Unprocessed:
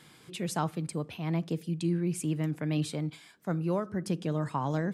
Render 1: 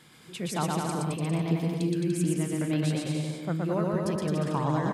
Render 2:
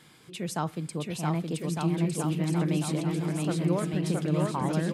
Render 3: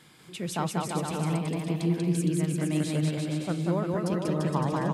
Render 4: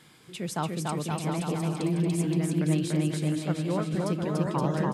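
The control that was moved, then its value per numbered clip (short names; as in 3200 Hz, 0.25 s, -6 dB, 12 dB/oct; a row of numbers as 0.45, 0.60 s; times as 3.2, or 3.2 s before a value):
bouncing-ball echo, first gap: 0.12, 0.67, 0.19, 0.29 s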